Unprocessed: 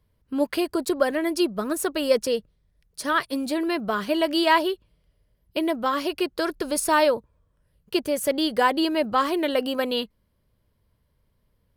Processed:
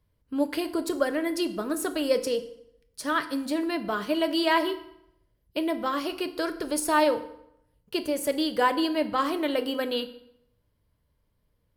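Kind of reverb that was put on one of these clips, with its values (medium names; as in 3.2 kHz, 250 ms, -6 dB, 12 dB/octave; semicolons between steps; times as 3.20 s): FDN reverb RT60 0.76 s, low-frequency decay 1×, high-frequency decay 0.8×, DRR 8.5 dB; trim -4 dB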